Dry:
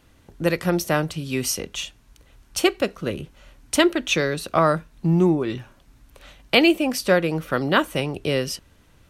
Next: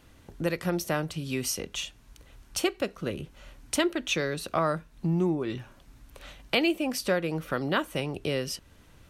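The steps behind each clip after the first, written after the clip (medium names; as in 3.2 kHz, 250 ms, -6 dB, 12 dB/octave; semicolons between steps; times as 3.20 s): compression 1.5:1, threshold -37 dBFS, peak gain reduction 9.5 dB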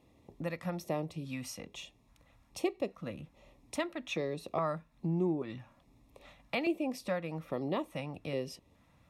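treble shelf 2.7 kHz -11 dB; LFO notch square 1.2 Hz 390–1500 Hz; comb of notches 1.5 kHz; trim -3.5 dB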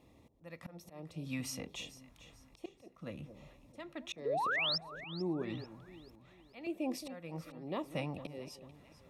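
slow attack 482 ms; painted sound rise, 4.25–4.78 s, 400–5600 Hz -35 dBFS; echo whose repeats swap between lows and highs 221 ms, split 860 Hz, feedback 61%, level -11 dB; trim +1.5 dB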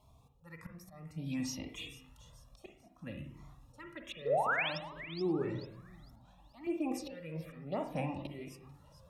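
touch-sensitive phaser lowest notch 300 Hz, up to 4.5 kHz, full sweep at -33.5 dBFS; reverberation, pre-delay 43 ms, DRR 5.5 dB; Shepard-style flanger rising 0.6 Hz; trim +6.5 dB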